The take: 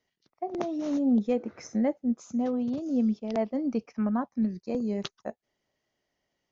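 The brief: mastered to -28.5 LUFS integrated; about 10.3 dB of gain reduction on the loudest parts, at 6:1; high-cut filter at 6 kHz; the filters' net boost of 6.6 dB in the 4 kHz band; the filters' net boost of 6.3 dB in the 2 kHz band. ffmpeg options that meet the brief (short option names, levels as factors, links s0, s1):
-af "lowpass=6000,equalizer=f=2000:t=o:g=6,equalizer=f=4000:t=o:g=7,acompressor=threshold=0.0251:ratio=6,volume=2.51"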